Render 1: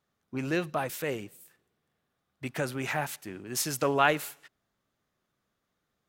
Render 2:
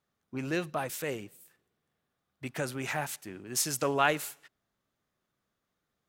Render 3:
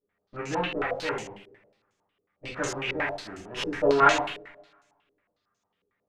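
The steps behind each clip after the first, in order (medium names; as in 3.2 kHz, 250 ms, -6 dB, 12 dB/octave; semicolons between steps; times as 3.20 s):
dynamic bell 7.8 kHz, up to +5 dB, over -47 dBFS, Q 0.8; trim -2.5 dB
comb filter that takes the minimum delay 10 ms; two-slope reverb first 0.59 s, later 1.6 s, from -22 dB, DRR -5 dB; step-sequenced low-pass 11 Hz 420–6500 Hz; trim -3.5 dB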